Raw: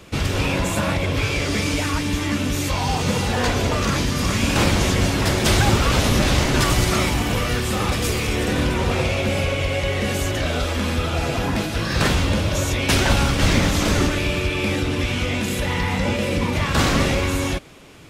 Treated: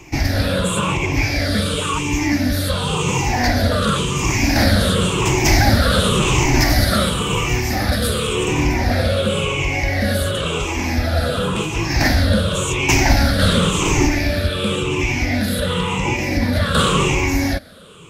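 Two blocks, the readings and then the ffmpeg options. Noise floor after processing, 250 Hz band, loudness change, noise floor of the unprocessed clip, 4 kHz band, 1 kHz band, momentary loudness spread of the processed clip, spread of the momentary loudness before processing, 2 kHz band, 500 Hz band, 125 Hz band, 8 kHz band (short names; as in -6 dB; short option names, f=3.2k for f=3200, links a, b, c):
-23 dBFS, +3.0 dB, +3.0 dB, -25 dBFS, +3.0 dB, +3.0 dB, 5 LU, 5 LU, +3.0 dB, +2.5 dB, +2.5 dB, +3.0 dB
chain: -af "afftfilt=real='re*pow(10,16/40*sin(2*PI*(0.71*log(max(b,1)*sr/1024/100)/log(2)-(-0.93)*(pts-256)/sr)))':imag='im*pow(10,16/40*sin(2*PI*(0.71*log(max(b,1)*sr/1024/100)/log(2)-(-0.93)*(pts-256)/sr)))':win_size=1024:overlap=0.75"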